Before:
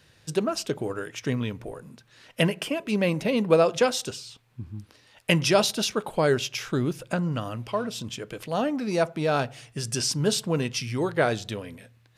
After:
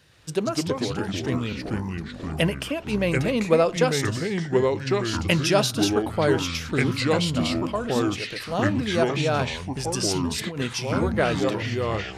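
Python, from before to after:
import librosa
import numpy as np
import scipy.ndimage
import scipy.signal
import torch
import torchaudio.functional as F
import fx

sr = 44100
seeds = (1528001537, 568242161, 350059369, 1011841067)

y = fx.over_compress(x, sr, threshold_db=-32.0, ratio=-1.0, at=(10.15, 10.59))
y = fx.echo_pitch(y, sr, ms=111, semitones=-4, count=3, db_per_echo=-3.0)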